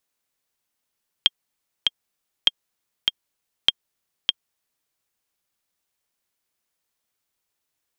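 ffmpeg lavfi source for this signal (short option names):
-f lavfi -i "aevalsrc='pow(10,(-1.5-3.5*gte(mod(t,2*60/99),60/99))/20)*sin(2*PI*3220*mod(t,60/99))*exp(-6.91*mod(t,60/99)/0.03)':d=3.63:s=44100"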